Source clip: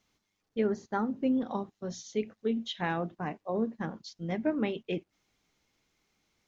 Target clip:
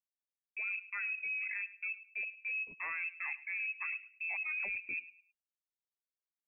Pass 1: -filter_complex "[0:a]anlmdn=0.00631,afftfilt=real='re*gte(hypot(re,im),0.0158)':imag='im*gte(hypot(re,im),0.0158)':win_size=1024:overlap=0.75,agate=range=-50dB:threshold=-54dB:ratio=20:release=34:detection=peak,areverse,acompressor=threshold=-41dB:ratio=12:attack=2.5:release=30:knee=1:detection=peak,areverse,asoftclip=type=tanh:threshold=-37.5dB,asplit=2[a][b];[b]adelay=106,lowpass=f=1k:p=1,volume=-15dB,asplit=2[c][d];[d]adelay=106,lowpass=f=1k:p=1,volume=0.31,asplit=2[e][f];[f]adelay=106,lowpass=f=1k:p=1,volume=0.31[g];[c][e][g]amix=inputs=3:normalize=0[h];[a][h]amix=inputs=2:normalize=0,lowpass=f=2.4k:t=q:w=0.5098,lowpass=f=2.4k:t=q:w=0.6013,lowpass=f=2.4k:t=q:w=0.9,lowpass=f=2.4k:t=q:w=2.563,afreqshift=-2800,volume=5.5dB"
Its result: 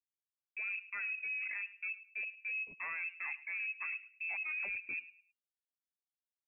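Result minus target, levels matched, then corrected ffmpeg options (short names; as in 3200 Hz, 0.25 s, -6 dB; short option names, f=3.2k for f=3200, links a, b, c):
soft clip: distortion +18 dB
-filter_complex "[0:a]anlmdn=0.00631,afftfilt=real='re*gte(hypot(re,im),0.0158)':imag='im*gte(hypot(re,im),0.0158)':win_size=1024:overlap=0.75,agate=range=-50dB:threshold=-54dB:ratio=20:release=34:detection=peak,areverse,acompressor=threshold=-41dB:ratio=12:attack=2.5:release=30:knee=1:detection=peak,areverse,asoftclip=type=tanh:threshold=-27dB,asplit=2[a][b];[b]adelay=106,lowpass=f=1k:p=1,volume=-15dB,asplit=2[c][d];[d]adelay=106,lowpass=f=1k:p=1,volume=0.31,asplit=2[e][f];[f]adelay=106,lowpass=f=1k:p=1,volume=0.31[g];[c][e][g]amix=inputs=3:normalize=0[h];[a][h]amix=inputs=2:normalize=0,lowpass=f=2.4k:t=q:w=0.5098,lowpass=f=2.4k:t=q:w=0.6013,lowpass=f=2.4k:t=q:w=0.9,lowpass=f=2.4k:t=q:w=2.563,afreqshift=-2800,volume=5.5dB"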